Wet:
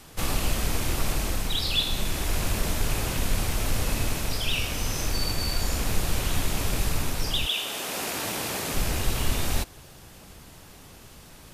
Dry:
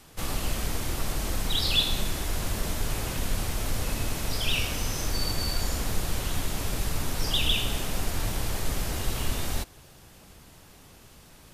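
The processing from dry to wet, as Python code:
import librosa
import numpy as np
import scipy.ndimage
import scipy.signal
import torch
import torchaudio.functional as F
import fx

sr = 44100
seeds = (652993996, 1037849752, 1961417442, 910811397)

y = fx.rattle_buzz(x, sr, strikes_db=-34.0, level_db=-31.0)
y = fx.highpass(y, sr, hz=fx.line((7.45, 480.0), (8.73, 170.0)), slope=12, at=(7.45, 8.73), fade=0.02)
y = fx.rider(y, sr, range_db=3, speed_s=0.5)
y = y * librosa.db_to_amplitude(1.5)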